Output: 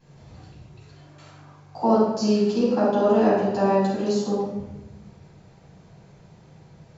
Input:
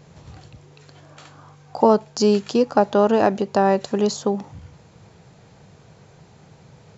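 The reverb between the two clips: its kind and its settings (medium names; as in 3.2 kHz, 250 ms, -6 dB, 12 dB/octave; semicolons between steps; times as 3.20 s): simulated room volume 400 m³, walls mixed, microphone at 8.2 m; trim -19.5 dB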